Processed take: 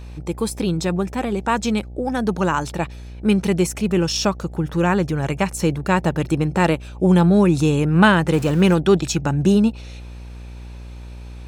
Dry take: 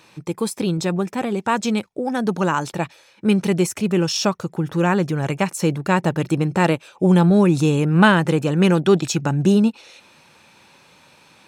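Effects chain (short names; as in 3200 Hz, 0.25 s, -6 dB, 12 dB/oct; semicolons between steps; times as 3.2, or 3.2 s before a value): 8.33–8.74 zero-crossing step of -29 dBFS; buzz 60 Hz, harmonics 14, -35 dBFS -9 dB/oct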